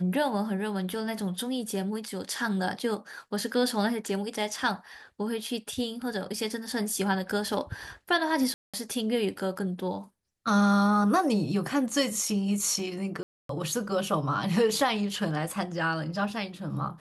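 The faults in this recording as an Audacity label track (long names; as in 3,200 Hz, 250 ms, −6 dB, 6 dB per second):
8.540000	8.740000	drop-out 196 ms
13.230000	13.490000	drop-out 263 ms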